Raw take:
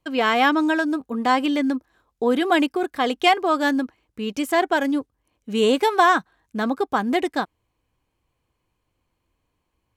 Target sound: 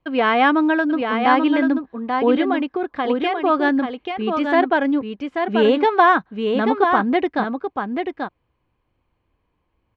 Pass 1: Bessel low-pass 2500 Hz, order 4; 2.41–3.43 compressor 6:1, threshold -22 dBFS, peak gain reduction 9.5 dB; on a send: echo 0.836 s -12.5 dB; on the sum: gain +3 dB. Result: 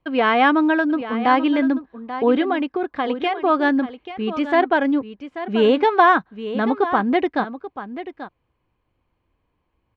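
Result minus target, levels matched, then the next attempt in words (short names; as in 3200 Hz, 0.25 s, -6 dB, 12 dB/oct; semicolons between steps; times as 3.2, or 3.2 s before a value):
echo-to-direct -7 dB
Bessel low-pass 2500 Hz, order 4; 2.41–3.43 compressor 6:1, threshold -22 dBFS, peak gain reduction 9.5 dB; on a send: echo 0.836 s -5.5 dB; on the sum: gain +3 dB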